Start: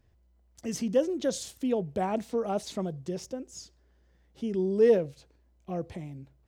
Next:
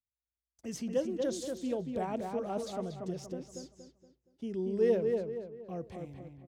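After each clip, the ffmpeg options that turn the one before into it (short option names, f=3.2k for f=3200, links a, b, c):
-filter_complex "[0:a]agate=range=-32dB:threshold=-52dB:ratio=16:detection=peak,asplit=2[a][b];[b]adelay=235,lowpass=f=2.7k:p=1,volume=-4dB,asplit=2[c][d];[d]adelay=235,lowpass=f=2.7k:p=1,volume=0.39,asplit=2[e][f];[f]adelay=235,lowpass=f=2.7k:p=1,volume=0.39,asplit=2[g][h];[h]adelay=235,lowpass=f=2.7k:p=1,volume=0.39,asplit=2[i][j];[j]adelay=235,lowpass=f=2.7k:p=1,volume=0.39[k];[c][e][g][i][k]amix=inputs=5:normalize=0[l];[a][l]amix=inputs=2:normalize=0,volume=-6.5dB"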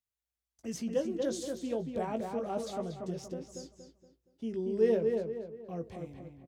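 -filter_complex "[0:a]asplit=2[a][b];[b]adelay=18,volume=-8.5dB[c];[a][c]amix=inputs=2:normalize=0"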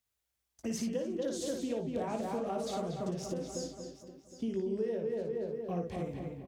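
-filter_complex "[0:a]acompressor=threshold=-39dB:ratio=10,asplit=2[a][b];[b]aecho=0:1:57|67|765:0.531|0.126|0.2[c];[a][c]amix=inputs=2:normalize=0,volume=6.5dB"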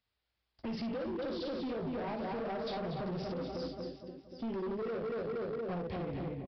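-af "alimiter=level_in=5.5dB:limit=-24dB:level=0:latency=1:release=87,volume=-5.5dB,aresample=11025,asoftclip=type=hard:threshold=-38.5dB,aresample=44100,volume=4dB"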